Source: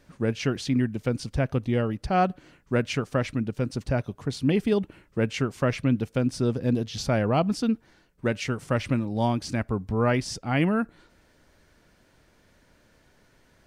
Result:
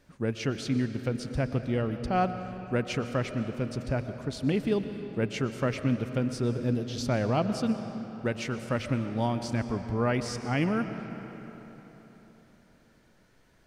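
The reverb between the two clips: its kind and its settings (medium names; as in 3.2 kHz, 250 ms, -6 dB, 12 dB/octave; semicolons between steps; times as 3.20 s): algorithmic reverb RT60 4 s, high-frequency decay 0.65×, pre-delay 80 ms, DRR 8.5 dB; trim -4 dB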